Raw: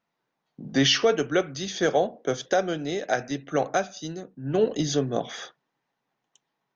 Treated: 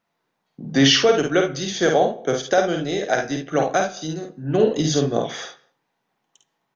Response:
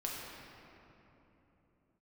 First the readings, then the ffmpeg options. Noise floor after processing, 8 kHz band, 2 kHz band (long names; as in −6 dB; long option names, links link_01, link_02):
−75 dBFS, can't be measured, +5.5 dB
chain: -filter_complex "[0:a]aecho=1:1:51|70:0.596|0.251,asplit=2[link_01][link_02];[1:a]atrim=start_sample=2205,afade=type=out:start_time=0.27:duration=0.01,atrim=end_sample=12348[link_03];[link_02][link_03]afir=irnorm=-1:irlink=0,volume=-17dB[link_04];[link_01][link_04]amix=inputs=2:normalize=0,volume=3dB"